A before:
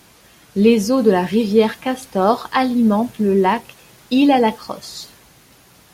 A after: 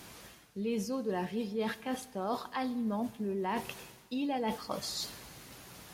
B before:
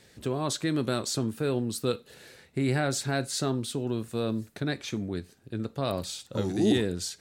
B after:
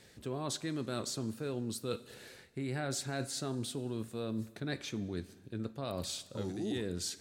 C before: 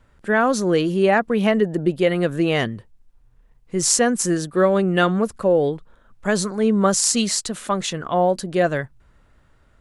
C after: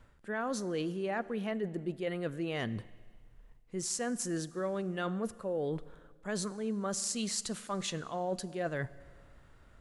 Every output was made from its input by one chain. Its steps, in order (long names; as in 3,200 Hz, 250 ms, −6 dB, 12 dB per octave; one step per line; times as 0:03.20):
reversed playback
downward compressor 5 to 1, threshold −32 dBFS
reversed playback
four-comb reverb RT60 1.7 s, combs from 32 ms, DRR 18 dB
level −2 dB